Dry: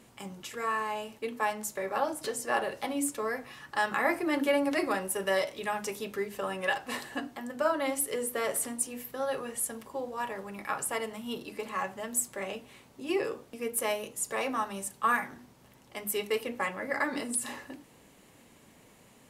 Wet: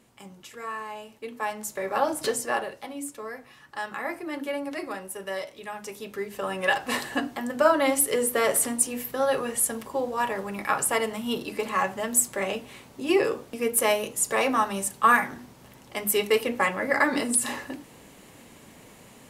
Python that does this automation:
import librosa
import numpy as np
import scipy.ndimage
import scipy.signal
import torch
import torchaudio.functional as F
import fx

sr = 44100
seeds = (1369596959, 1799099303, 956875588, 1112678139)

y = fx.gain(x, sr, db=fx.line((1.11, -3.5), (2.3, 8.0), (2.8, -4.5), (5.71, -4.5), (6.89, 8.0)))